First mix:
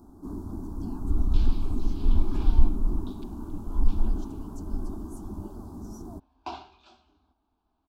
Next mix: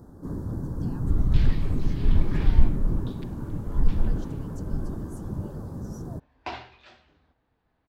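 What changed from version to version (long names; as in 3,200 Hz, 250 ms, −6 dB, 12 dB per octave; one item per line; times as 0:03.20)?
master: remove phaser with its sweep stopped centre 510 Hz, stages 6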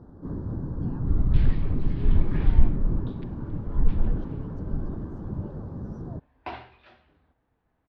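speech: add spectral tilt −2 dB per octave
master: add high-frequency loss of the air 260 metres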